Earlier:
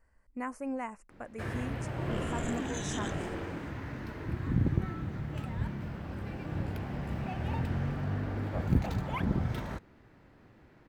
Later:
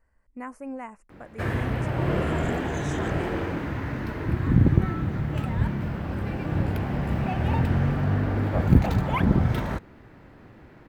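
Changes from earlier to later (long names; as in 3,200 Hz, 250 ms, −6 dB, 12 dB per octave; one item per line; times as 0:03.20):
first sound +9.5 dB
master: add parametric band 6,000 Hz −4 dB 1.7 octaves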